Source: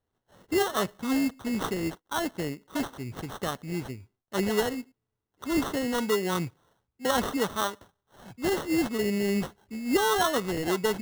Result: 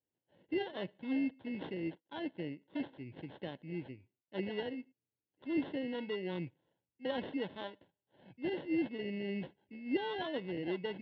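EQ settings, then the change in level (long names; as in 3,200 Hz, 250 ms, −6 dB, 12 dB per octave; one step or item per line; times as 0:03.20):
high-frequency loss of the air 330 metres
loudspeaker in its box 210–4,600 Hz, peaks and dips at 220 Hz −8 dB, 420 Hz −8 dB, 710 Hz −7 dB, 1,300 Hz −5 dB, 1,900 Hz −3 dB, 3,800 Hz −6 dB
phaser with its sweep stopped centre 2,900 Hz, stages 4
−2.0 dB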